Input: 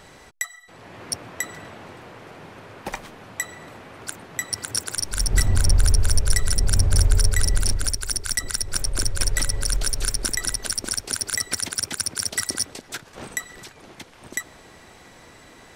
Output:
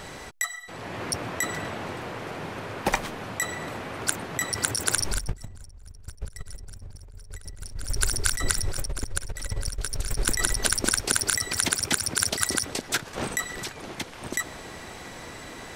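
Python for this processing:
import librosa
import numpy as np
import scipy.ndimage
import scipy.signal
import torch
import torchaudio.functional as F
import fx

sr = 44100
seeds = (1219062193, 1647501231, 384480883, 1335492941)

y = fx.peak_eq(x, sr, hz=7300.0, db=6.0, octaves=0.43, at=(5.34, 5.81))
y = fx.over_compress(y, sr, threshold_db=-27.0, ratio=-0.5)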